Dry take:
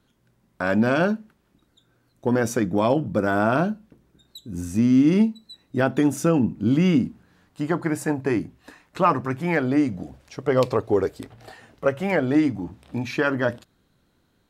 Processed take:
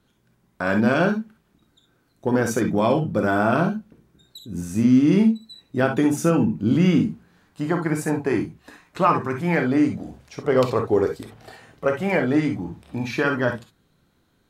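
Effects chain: gated-style reverb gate 80 ms rising, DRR 4 dB

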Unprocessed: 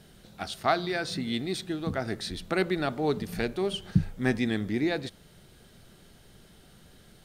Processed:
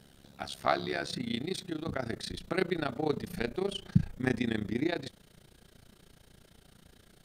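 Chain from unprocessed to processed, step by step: AM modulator 69 Hz, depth 80%, from 1.08 s modulator 29 Hz

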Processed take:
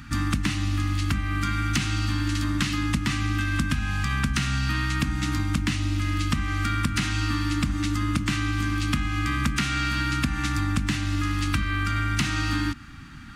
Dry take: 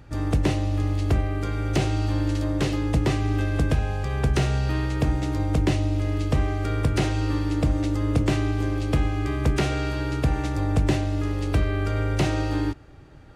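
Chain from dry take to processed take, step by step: FFT filter 130 Hz 0 dB, 240 Hz +11 dB, 490 Hz -28 dB, 1.2 kHz +9 dB; compression, threshold -25 dBFS, peak gain reduction 12 dB; trim +3.5 dB

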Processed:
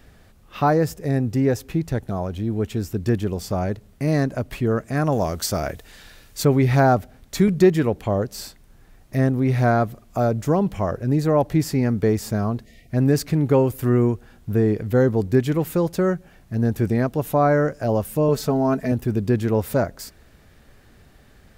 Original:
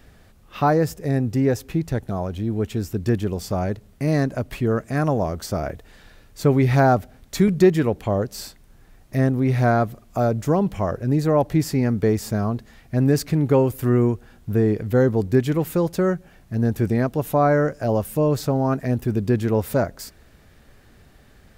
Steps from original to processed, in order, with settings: 5.12–6.45 s: treble shelf 2 kHz +9.5 dB; 12.65–12.89 s: time-frequency box 750–1800 Hz -22 dB; 18.28–18.92 s: comb 4.6 ms, depth 62%

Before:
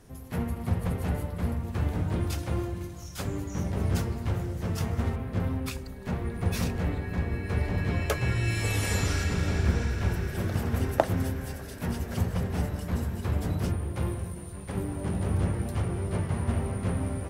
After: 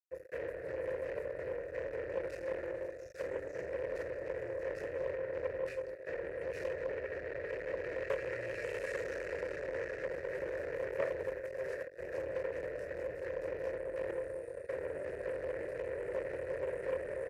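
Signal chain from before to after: octave divider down 1 oct, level +2 dB; early reflections 25 ms -4 dB, 75 ms -16.5 dB; on a send at -17 dB: reverberation RT60 0.45 s, pre-delay 3 ms; 11.40–11.99 s: on the sum: compressor with a negative ratio -34 dBFS, ratio -1; fuzz box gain 32 dB, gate -36 dBFS; vowel filter e; static phaser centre 850 Hz, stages 6; loudspeaker Doppler distortion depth 0.16 ms; trim -4.5 dB

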